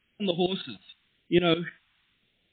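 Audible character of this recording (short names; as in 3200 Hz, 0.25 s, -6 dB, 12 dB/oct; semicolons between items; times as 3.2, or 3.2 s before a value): tremolo saw up 6.5 Hz, depth 85%; a quantiser's noise floor 12-bit, dither triangular; phasing stages 2, 0.94 Hz, lowest notch 450–1100 Hz; MP3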